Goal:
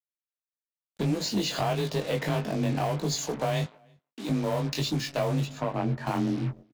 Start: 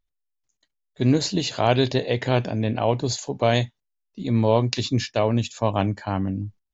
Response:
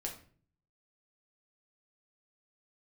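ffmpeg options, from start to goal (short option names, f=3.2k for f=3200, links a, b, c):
-filter_complex "[0:a]afreqshift=25,asplit=2[a][b];[1:a]atrim=start_sample=2205,lowpass=3k[c];[b][c]afir=irnorm=-1:irlink=0,volume=-15dB[d];[a][d]amix=inputs=2:normalize=0,acompressor=threshold=-26dB:ratio=12,acrusher=bits=6:mix=0:aa=0.5,asplit=3[e][f][g];[e]afade=t=out:st=5.44:d=0.02[h];[f]lowpass=f=1.6k:p=1,afade=t=in:st=5.44:d=0.02,afade=t=out:st=6.05:d=0.02[i];[g]afade=t=in:st=6.05:d=0.02[j];[h][i][j]amix=inputs=3:normalize=0,asoftclip=type=tanh:threshold=-24.5dB,asettb=1/sr,asplit=3[k][l][m];[k]atrim=end=3.644[n];[l]atrim=start=3.64:end=4.29,asetpts=PTS-STARTPTS,afade=t=in:d=0.004:c=qsin,afade=t=out:st=0.646:d=0.004:c=qsin,highpass=f=630:p=1[o];[m]atrim=start=4.286[p];[n][o]acrossfade=d=0.004:c1=hsin:c2=qsin[q];[q][p]acrossfade=d=0.004:c1=qsin:c2=hsin,asplit=2[r][s];[s]adelay=326.5,volume=-30dB,highshelf=f=4k:g=-7.35[t];[r][t]amix=inputs=2:normalize=0,flanger=delay=19:depth=3.2:speed=1.6,volume=7.5dB"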